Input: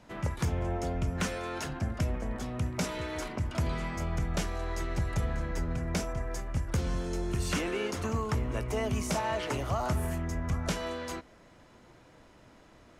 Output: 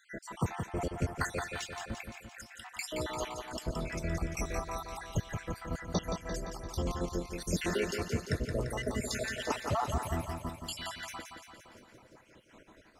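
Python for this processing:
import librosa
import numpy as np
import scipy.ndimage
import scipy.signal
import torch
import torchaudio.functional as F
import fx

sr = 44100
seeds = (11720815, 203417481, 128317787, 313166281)

p1 = fx.spec_dropout(x, sr, seeds[0], share_pct=73)
p2 = fx.low_shelf(p1, sr, hz=150.0, db=-7.0)
p3 = p2 + fx.echo_feedback(p2, sr, ms=172, feedback_pct=60, wet_db=-6.5, dry=0)
y = p3 * 10.0 ** (3.5 / 20.0)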